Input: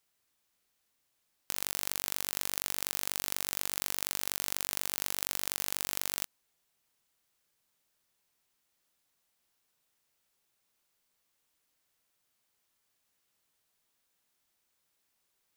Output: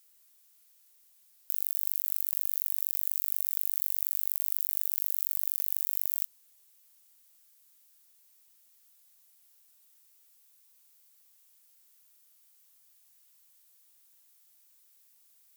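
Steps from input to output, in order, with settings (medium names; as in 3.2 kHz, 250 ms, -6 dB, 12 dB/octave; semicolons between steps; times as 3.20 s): one-sided clip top -28 dBFS; RIAA curve recording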